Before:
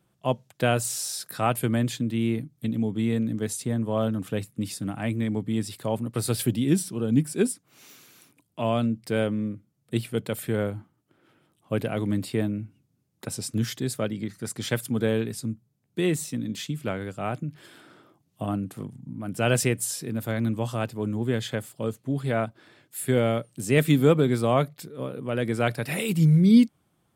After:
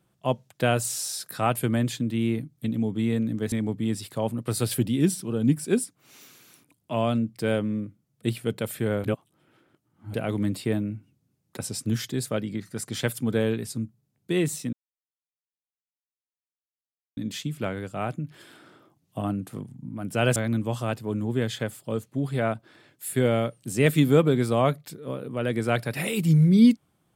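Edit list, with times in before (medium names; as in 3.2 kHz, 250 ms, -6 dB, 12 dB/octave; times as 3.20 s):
3.52–5.20 s: delete
10.72–11.82 s: reverse
16.41 s: insert silence 2.44 s
19.60–20.28 s: delete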